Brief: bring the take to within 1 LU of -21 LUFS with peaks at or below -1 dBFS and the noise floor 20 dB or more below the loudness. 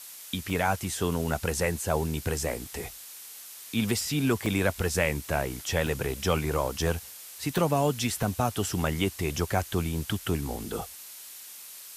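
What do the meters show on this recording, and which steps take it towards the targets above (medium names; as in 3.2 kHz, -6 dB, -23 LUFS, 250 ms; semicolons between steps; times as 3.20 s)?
dropouts 7; longest dropout 1.8 ms; noise floor -45 dBFS; noise floor target -49 dBFS; loudness -29.0 LUFS; peak level -11.0 dBFS; loudness target -21.0 LUFS
-> interpolate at 0.50/4.46/5.87/6.87/7.58/8.23/10.11 s, 1.8 ms; noise reduction 6 dB, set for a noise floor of -45 dBFS; trim +8 dB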